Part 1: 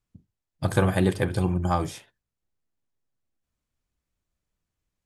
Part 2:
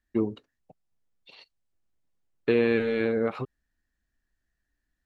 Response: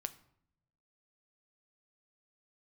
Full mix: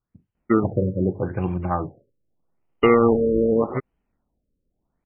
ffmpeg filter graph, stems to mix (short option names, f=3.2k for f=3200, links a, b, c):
-filter_complex "[0:a]volume=1dB[a];[1:a]acrusher=samples=27:mix=1:aa=0.000001,acontrast=76,adelay=350,volume=1.5dB[b];[a][b]amix=inputs=2:normalize=0,lowshelf=f=82:g=-6.5,afftfilt=real='re*lt(b*sr/1024,560*pow(3300/560,0.5+0.5*sin(2*PI*0.82*pts/sr)))':imag='im*lt(b*sr/1024,560*pow(3300/560,0.5+0.5*sin(2*PI*0.82*pts/sr)))':win_size=1024:overlap=0.75"